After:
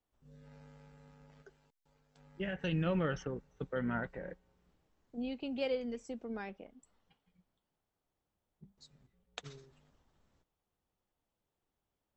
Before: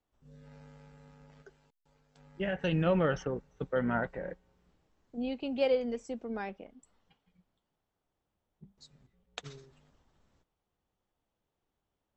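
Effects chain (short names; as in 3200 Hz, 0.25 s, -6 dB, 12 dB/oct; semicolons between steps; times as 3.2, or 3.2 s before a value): dynamic EQ 700 Hz, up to -6 dB, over -41 dBFS, Q 1; gain -3 dB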